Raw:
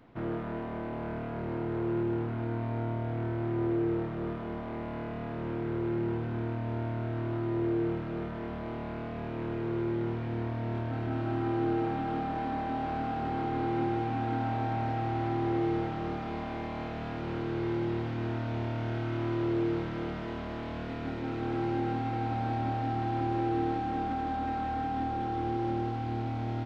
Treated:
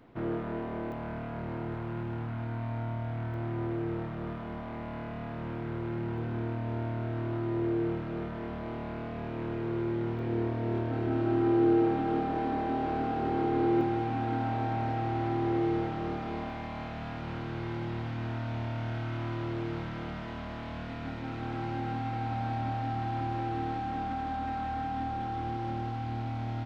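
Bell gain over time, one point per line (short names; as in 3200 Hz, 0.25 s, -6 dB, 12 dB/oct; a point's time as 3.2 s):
bell 390 Hz 0.7 oct
+2.5 dB
from 0.92 s -6.5 dB
from 1.74 s -13.5 dB
from 3.34 s -7 dB
from 6.18 s -0.5 dB
from 10.19 s +8.5 dB
from 13.81 s +1 dB
from 16.5 s -10 dB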